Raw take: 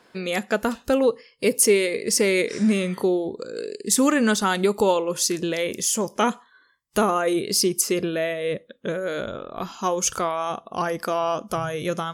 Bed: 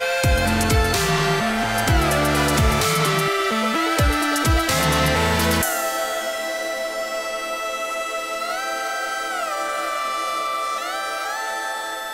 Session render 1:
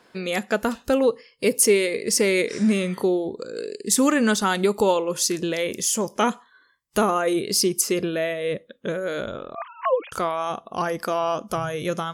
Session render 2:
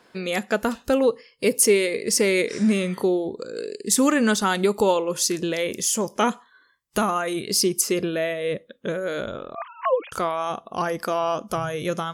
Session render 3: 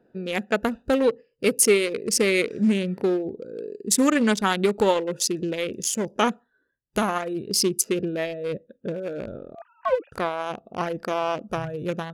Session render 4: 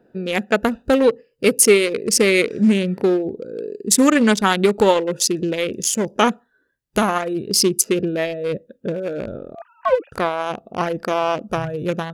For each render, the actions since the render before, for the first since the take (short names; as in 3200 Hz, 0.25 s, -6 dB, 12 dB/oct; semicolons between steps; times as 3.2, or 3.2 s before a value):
9.55–10.12 sine-wave speech
6.98–7.48 bell 440 Hz -9 dB
Wiener smoothing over 41 samples; dynamic EQ 2600 Hz, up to +4 dB, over -40 dBFS, Q 0.9
gain +5.5 dB; limiter -1 dBFS, peak gain reduction 1 dB